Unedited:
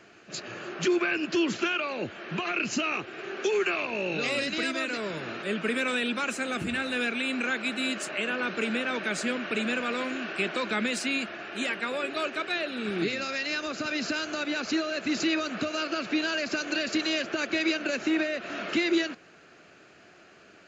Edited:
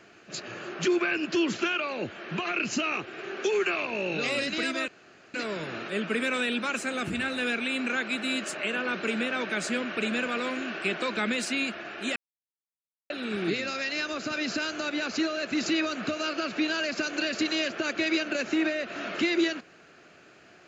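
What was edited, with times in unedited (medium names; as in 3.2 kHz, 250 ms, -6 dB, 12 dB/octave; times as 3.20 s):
4.88 s: insert room tone 0.46 s
11.70–12.64 s: mute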